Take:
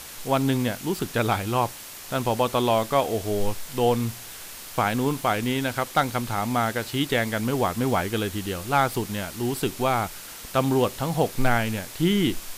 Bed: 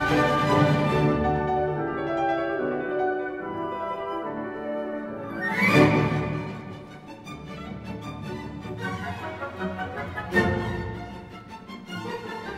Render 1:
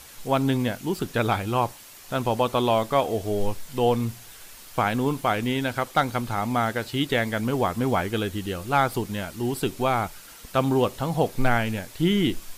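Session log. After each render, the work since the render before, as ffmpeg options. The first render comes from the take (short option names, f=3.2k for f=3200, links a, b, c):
-af "afftdn=nr=7:nf=-40"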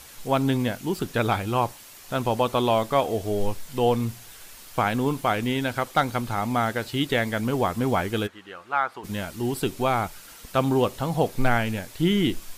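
-filter_complex "[0:a]asplit=3[a][b][c];[a]afade=t=out:st=8.26:d=0.02[d];[b]bandpass=f=1.3k:t=q:w=1.4,afade=t=in:st=8.26:d=0.02,afade=t=out:st=9.03:d=0.02[e];[c]afade=t=in:st=9.03:d=0.02[f];[d][e][f]amix=inputs=3:normalize=0"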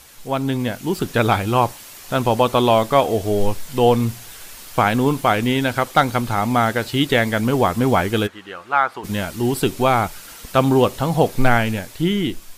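-af "dynaudnorm=f=120:g=13:m=8dB"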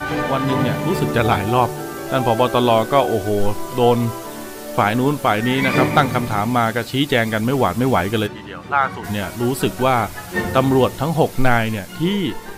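-filter_complex "[1:a]volume=-0.5dB[a];[0:a][a]amix=inputs=2:normalize=0"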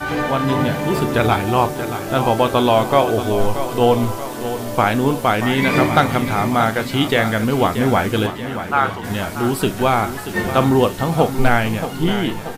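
-filter_complex "[0:a]asplit=2[a][b];[b]adelay=37,volume=-13dB[c];[a][c]amix=inputs=2:normalize=0,aecho=1:1:632|1264|1896|2528|3160|3792:0.282|0.152|0.0822|0.0444|0.024|0.0129"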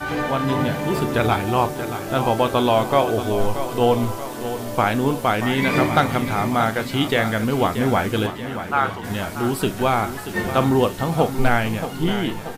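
-af "volume=-3dB"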